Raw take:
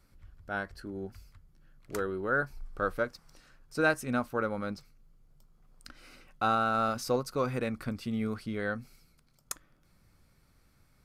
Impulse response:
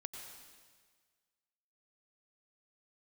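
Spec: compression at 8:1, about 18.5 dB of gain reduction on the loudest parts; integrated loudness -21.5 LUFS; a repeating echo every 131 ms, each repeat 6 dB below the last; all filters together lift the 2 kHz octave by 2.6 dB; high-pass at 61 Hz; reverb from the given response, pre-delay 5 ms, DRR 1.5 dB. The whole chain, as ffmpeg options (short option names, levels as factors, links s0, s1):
-filter_complex "[0:a]highpass=61,equalizer=f=2000:t=o:g=4,acompressor=threshold=0.0112:ratio=8,aecho=1:1:131|262|393|524|655|786:0.501|0.251|0.125|0.0626|0.0313|0.0157,asplit=2[s0][s1];[1:a]atrim=start_sample=2205,adelay=5[s2];[s1][s2]afir=irnorm=-1:irlink=0,volume=1.19[s3];[s0][s3]amix=inputs=2:normalize=0,volume=9.44"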